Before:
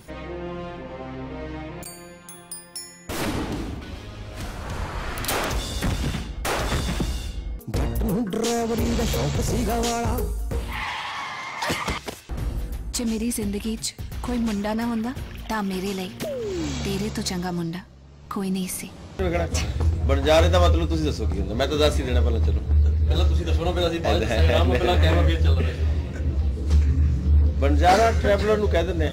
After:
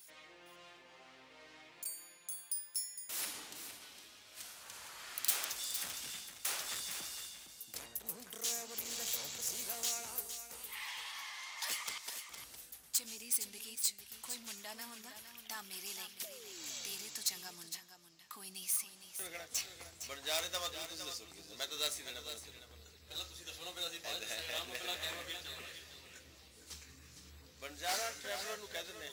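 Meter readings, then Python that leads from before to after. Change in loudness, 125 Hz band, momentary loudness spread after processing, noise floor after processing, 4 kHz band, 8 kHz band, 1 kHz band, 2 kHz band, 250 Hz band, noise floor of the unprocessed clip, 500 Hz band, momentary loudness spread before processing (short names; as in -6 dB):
-16.0 dB, under -40 dB, 19 LU, -60 dBFS, -9.0 dB, -4.0 dB, -21.5 dB, -14.5 dB, -32.5 dB, -42 dBFS, -26.0 dB, 15 LU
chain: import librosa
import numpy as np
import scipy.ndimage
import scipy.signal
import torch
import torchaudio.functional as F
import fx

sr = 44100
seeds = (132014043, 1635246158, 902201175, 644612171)

y = fx.tracing_dist(x, sr, depth_ms=0.03)
y = np.diff(y, prepend=0.0)
y = y + 10.0 ** (-9.5 / 20.0) * np.pad(y, (int(460 * sr / 1000.0), 0))[:len(y)]
y = y * 10.0 ** (-4.0 / 20.0)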